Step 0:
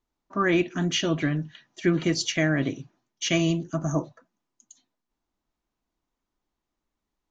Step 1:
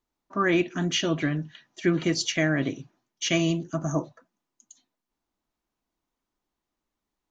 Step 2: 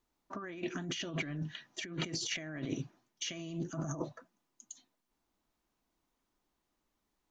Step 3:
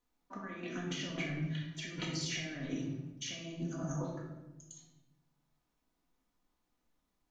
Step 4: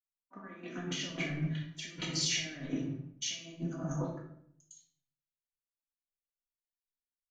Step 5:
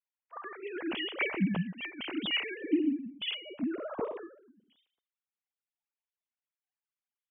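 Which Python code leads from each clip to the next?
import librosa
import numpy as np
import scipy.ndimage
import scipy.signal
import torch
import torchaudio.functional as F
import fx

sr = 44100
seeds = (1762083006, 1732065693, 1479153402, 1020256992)

y1 = fx.low_shelf(x, sr, hz=110.0, db=-5.0)
y2 = fx.over_compress(y1, sr, threshold_db=-34.0, ratio=-1.0)
y2 = F.gain(torch.from_numpy(y2), -5.5).numpy()
y3 = fx.room_shoebox(y2, sr, seeds[0], volume_m3=450.0, walls='mixed', distance_m=1.9)
y3 = F.gain(torch.from_numpy(y3), -5.5).numpy()
y4 = fx.band_widen(y3, sr, depth_pct=100)
y5 = fx.sine_speech(y4, sr)
y5 = F.gain(torch.from_numpy(y5), 3.5).numpy()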